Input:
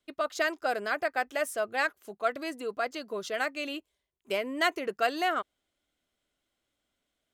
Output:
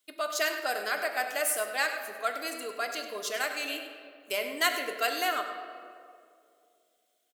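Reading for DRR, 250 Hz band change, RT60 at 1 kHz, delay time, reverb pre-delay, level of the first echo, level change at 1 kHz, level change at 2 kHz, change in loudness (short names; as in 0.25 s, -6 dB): 3.5 dB, -5.5 dB, 2.0 s, 99 ms, 3 ms, -11.5 dB, -1.0 dB, +1.0 dB, +0.5 dB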